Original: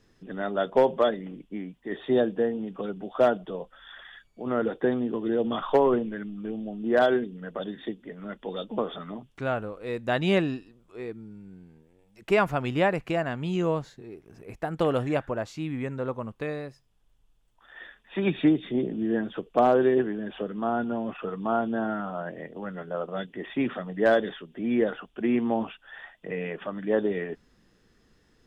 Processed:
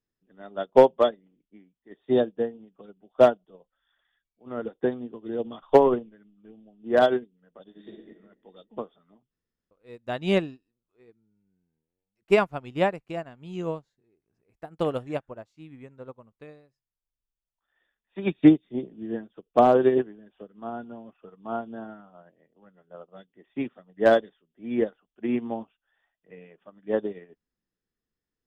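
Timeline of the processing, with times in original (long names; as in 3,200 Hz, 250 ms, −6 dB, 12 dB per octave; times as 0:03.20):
0:07.63–0:08.12: thrown reverb, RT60 1.6 s, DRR −3 dB
0:09.31–0:09.71: fill with room tone
whole clip: dynamic equaliser 1,700 Hz, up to −4 dB, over −46 dBFS, Q 1.7; expander for the loud parts 2.5 to 1, over −39 dBFS; level +7.5 dB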